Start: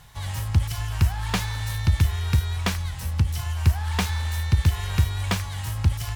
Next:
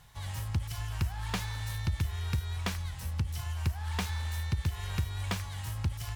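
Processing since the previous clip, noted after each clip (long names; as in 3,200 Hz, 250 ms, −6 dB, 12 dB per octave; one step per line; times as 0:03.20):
downward compressor 2.5 to 1, threshold −20 dBFS, peak gain reduction 6 dB
level −7.5 dB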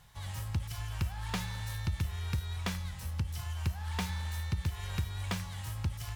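tuned comb filter 180 Hz, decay 0.84 s, harmonics odd, mix 70%
level +8 dB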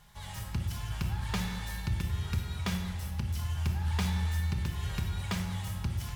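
convolution reverb RT60 1.5 s, pre-delay 5 ms, DRR 3 dB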